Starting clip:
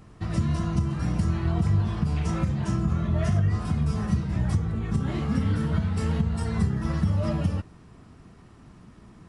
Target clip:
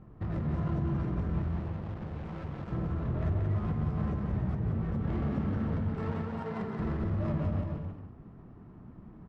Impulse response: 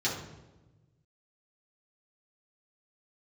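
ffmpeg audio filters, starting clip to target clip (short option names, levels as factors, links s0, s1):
-filter_complex "[0:a]asettb=1/sr,asplit=3[s0][s1][s2];[s0]atrim=end=5.944[s3];[s1]atrim=start=5.94:end=6.79,asetpts=PTS-STARTPTS,afade=t=in:d=0.004:c=qsin,afade=t=out:st=0.846:d=0.004:c=qsin,highpass=310[s4];[s2]atrim=start=6.786[s5];[s3][s4]acrossfade=d=0.004:c1=hsin:c2=qsin[s6];[s6][s5]acrossfade=d=0.004:c1=qsin:c2=hsin,acrossover=split=2700|7500[s7][s8][s9];[s7]acompressor=threshold=0.0562:ratio=4[s10];[s8]acompressor=threshold=0.00112:ratio=4[s11];[s9]acompressor=threshold=0.00158:ratio=4[s12];[s10][s11][s12]amix=inputs=3:normalize=0,flanger=delay=5.4:depth=8.1:regen=-63:speed=1.1:shape=sinusoidal,asoftclip=type=hard:threshold=0.0266,asettb=1/sr,asplit=3[s13][s14][s15];[s13]atrim=end=1.424[s16];[s14]atrim=start=1.42:end=2.72,asetpts=PTS-STARTPTS,afade=t=in:d=0.004:c=qsin,afade=t=out:st=1.296:d=0.004:c=qsin,acrusher=bits=4:mix=0:aa=0.5[s17];[s15]atrim=start=2.716[s18];[s16][s17]acrossfade=d=0.004:c1=hsin:c2=qsin[s19];[s19][s18]acrossfade=d=0.004:c1=qsin:c2=hsin,adynamicsmooth=sensitivity=6.5:basefreq=1100,aecho=1:1:180|306|394.2|455.9|499.2:0.631|0.398|0.251|0.158|0.1,volume=1.33"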